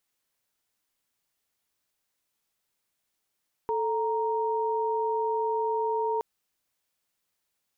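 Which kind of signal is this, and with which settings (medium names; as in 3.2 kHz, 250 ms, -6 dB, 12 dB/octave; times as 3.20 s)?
chord A4/A#5 sine, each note -27.5 dBFS 2.52 s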